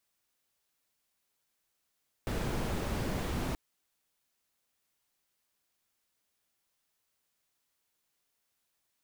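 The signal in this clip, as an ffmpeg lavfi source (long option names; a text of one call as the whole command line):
ffmpeg -f lavfi -i "anoisesrc=color=brown:amplitude=0.105:duration=1.28:sample_rate=44100:seed=1" out.wav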